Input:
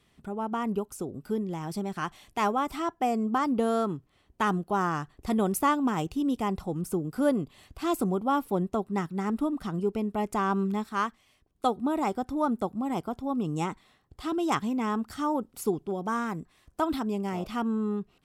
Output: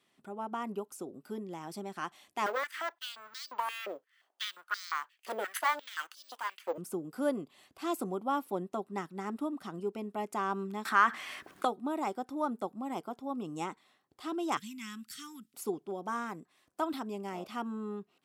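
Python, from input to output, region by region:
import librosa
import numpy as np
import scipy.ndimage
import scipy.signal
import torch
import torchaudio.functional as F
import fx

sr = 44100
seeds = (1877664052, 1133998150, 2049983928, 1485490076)

y = fx.chain(x, sr, fx.lower_of_two(delay_ms=0.63),
    fx.resample_bad(factor=2, down='none', up='hold'),
    fx.filter_held_highpass(hz=5.7, low_hz=520.0, high_hz=4700.0), at=(2.46, 6.78))
y = fx.chain(y, sr, fx.peak_eq(hz=1600.0, db=12.5, octaves=1.3),
    fx.env_flatten(amount_pct=50), at=(10.85, 11.65))
y = fx.chain(y, sr, fx.cheby1_bandstop(low_hz=170.0, high_hz=2200.0, order=2),
    fx.high_shelf(hz=3200.0, db=9.0), at=(14.57, 15.54))
y = scipy.signal.sosfilt(scipy.signal.butter(2, 270.0, 'highpass', fs=sr, output='sos'), y)
y = fx.notch(y, sr, hz=450.0, q=13.0)
y = y * 10.0 ** (-5.0 / 20.0)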